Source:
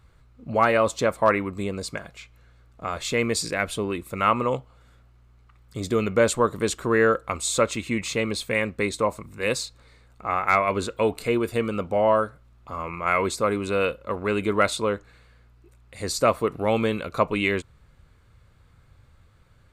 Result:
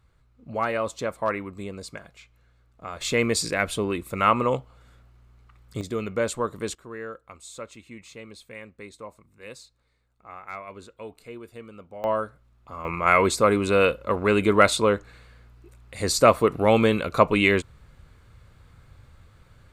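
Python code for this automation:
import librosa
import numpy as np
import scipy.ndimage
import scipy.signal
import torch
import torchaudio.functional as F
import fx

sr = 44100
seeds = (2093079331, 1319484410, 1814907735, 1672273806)

y = fx.gain(x, sr, db=fx.steps((0.0, -6.5), (3.01, 1.0), (5.81, -6.0), (6.75, -17.0), (12.04, -5.0), (12.85, 4.0)))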